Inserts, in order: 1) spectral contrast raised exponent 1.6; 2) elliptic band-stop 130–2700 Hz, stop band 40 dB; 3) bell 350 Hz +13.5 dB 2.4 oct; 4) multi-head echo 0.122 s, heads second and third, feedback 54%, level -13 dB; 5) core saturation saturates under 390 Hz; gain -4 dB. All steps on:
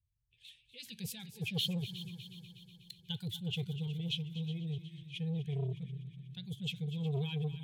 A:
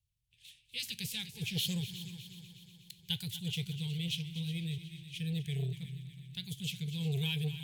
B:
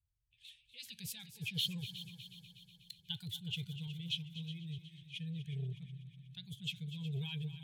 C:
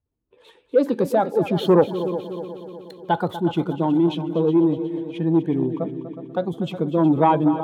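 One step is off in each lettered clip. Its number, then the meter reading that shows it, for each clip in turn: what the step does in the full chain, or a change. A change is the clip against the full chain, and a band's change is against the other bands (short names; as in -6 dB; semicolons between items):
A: 1, 8 kHz band +6.5 dB; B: 3, crest factor change +4.0 dB; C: 2, 500 Hz band +18.0 dB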